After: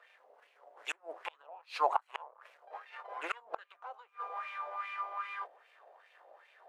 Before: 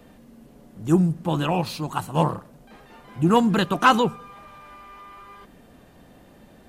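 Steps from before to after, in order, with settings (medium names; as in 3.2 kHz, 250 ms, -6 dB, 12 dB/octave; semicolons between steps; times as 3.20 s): partial rectifier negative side -7 dB; gate -48 dBFS, range -8 dB; steep high-pass 440 Hz 36 dB/octave; inverted gate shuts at -23 dBFS, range -33 dB; wah-wah 2.5 Hz 640–2500 Hz, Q 3.1; trim +13.5 dB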